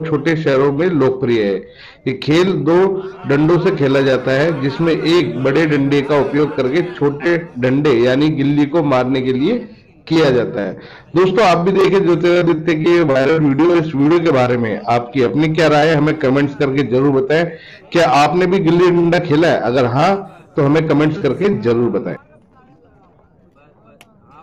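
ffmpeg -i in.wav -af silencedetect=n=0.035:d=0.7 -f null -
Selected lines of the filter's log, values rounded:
silence_start: 22.17
silence_end: 24.01 | silence_duration: 1.84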